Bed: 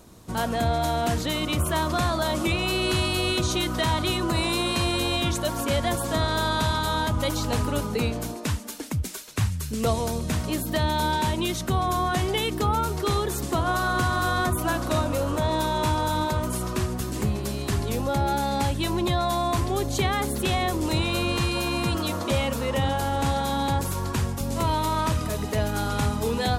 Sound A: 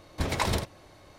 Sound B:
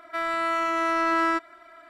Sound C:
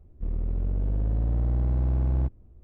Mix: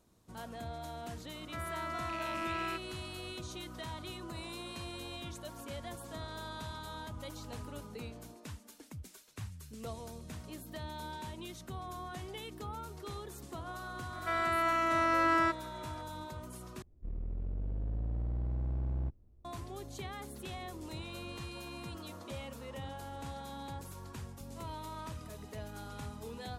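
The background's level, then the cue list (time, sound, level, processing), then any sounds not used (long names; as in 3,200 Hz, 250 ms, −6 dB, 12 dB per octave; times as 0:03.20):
bed −19 dB
0:01.39: mix in B −14.5 dB + loose part that buzzes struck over −41 dBFS, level −19 dBFS
0:14.13: mix in B −5 dB
0:16.82: overwrite with C −10.5 dB
not used: A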